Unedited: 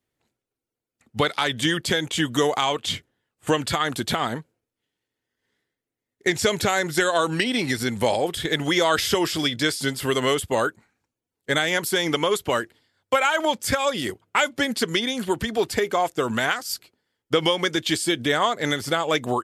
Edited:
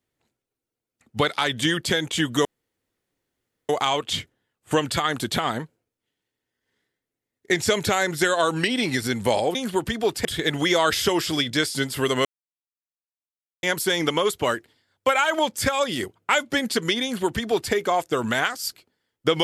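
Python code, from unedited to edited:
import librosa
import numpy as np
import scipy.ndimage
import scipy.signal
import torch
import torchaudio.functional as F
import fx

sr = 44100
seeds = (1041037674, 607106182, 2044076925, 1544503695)

y = fx.edit(x, sr, fx.insert_room_tone(at_s=2.45, length_s=1.24),
    fx.silence(start_s=10.31, length_s=1.38),
    fx.duplicate(start_s=15.09, length_s=0.7, to_s=8.31), tone=tone)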